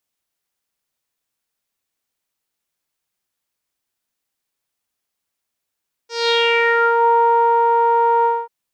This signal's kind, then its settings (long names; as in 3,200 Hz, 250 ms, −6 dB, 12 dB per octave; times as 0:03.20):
subtractive voice saw A#4 12 dB per octave, low-pass 990 Hz, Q 4.7, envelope 2.5 octaves, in 0.95 s, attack 199 ms, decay 1.34 s, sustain −3 dB, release 0.23 s, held 2.16 s